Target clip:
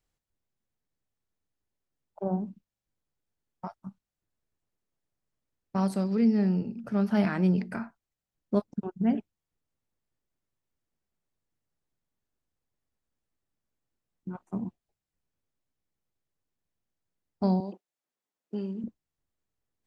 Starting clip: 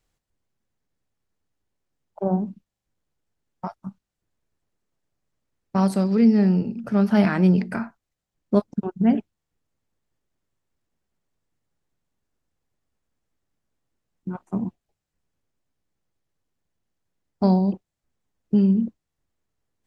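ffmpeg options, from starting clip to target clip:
ffmpeg -i in.wav -filter_complex "[0:a]asettb=1/sr,asplit=3[link_01][link_02][link_03];[link_01]atrim=end=17.604[link_04];[link_02]atrim=start=17.6:end=18.84,asetpts=PTS-STARTPTS,afade=type=in:duration=0.004:curve=qsin,afade=type=out:start_time=1.236:duration=0.004:curve=qsin,highpass=350[link_05];[link_03]atrim=start=18.836[link_06];[link_04][link_05]acrossfade=duration=0.004:curve1=hsin:curve2=qsin[link_07];[link_07][link_06]acrossfade=duration=0.004:curve1=qsin:curve2=hsin,volume=-7dB" out.wav

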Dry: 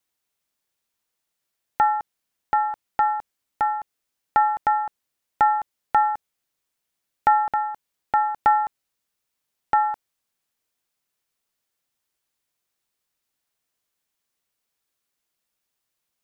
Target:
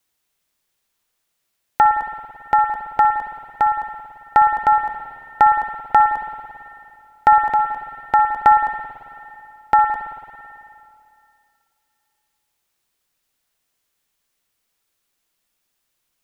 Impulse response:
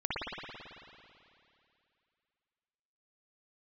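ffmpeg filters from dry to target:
-filter_complex "[0:a]asplit=2[link_01][link_02];[link_02]lowshelf=frequency=81:gain=11.5[link_03];[1:a]atrim=start_sample=2205,highshelf=frequency=2000:gain=7.5[link_04];[link_03][link_04]afir=irnorm=-1:irlink=0,volume=-15dB[link_05];[link_01][link_05]amix=inputs=2:normalize=0,volume=4dB"

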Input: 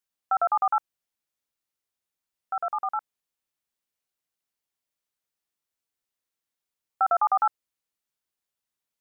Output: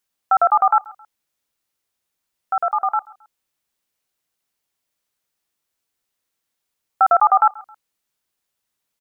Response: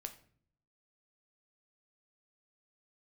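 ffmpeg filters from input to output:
-af "aecho=1:1:134|268:0.0708|0.0262,volume=8.5dB"

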